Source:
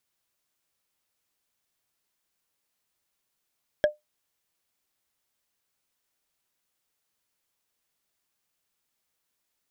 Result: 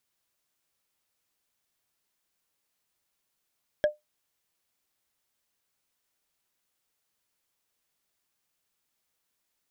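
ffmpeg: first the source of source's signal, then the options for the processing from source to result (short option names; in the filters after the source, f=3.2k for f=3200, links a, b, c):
-f lavfi -i "aevalsrc='0.224*pow(10,-3*t/0.16)*sin(2*PI*600*t)+0.1*pow(10,-3*t/0.047)*sin(2*PI*1654.2*t)+0.0447*pow(10,-3*t/0.021)*sin(2*PI*3242.4*t)+0.02*pow(10,-3*t/0.012)*sin(2*PI*5359.8*t)+0.00891*pow(10,-3*t/0.007)*sin(2*PI*8004*t)':d=0.45:s=44100"
-af "alimiter=limit=-15dB:level=0:latency=1:release=19"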